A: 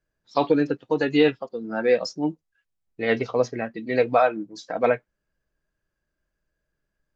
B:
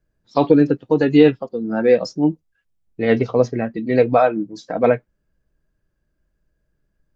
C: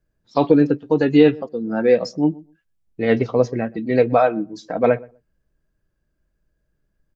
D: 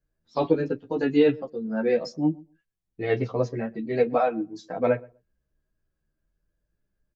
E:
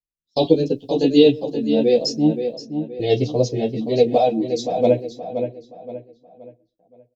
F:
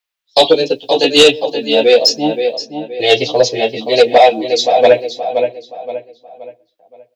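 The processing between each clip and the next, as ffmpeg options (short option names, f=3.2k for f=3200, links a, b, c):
-af "lowshelf=f=480:g=11.5"
-filter_complex "[0:a]asplit=2[a][b];[b]adelay=124,lowpass=f=1k:p=1,volume=-22dB,asplit=2[c][d];[d]adelay=124,lowpass=f=1k:p=1,volume=0.17[e];[a][c][e]amix=inputs=3:normalize=0,volume=-1dB"
-filter_complex "[0:a]asplit=2[a][b];[b]adelay=10.4,afreqshift=0.5[c];[a][c]amix=inputs=2:normalize=1,volume=-3.5dB"
-filter_complex "[0:a]agate=range=-29dB:threshold=-47dB:ratio=16:detection=peak,firequalizer=gain_entry='entry(720,0);entry(1300,-27);entry(3200,10)':delay=0.05:min_phase=1,asplit=2[a][b];[b]adelay=523,lowpass=f=3.2k:p=1,volume=-8dB,asplit=2[c][d];[d]adelay=523,lowpass=f=3.2k:p=1,volume=0.37,asplit=2[e][f];[f]adelay=523,lowpass=f=3.2k:p=1,volume=0.37,asplit=2[g][h];[h]adelay=523,lowpass=f=3.2k:p=1,volume=0.37[i];[c][e][g][i]amix=inputs=4:normalize=0[j];[a][j]amix=inputs=2:normalize=0,volume=6.5dB"
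-filter_complex "[0:a]acrossover=split=530 3600:gain=0.0891 1 0.0708[a][b][c];[a][b][c]amix=inputs=3:normalize=0,crystalizer=i=5:c=0,aeval=exprs='0.473*sin(PI/2*1.78*val(0)/0.473)':c=same,volume=5.5dB"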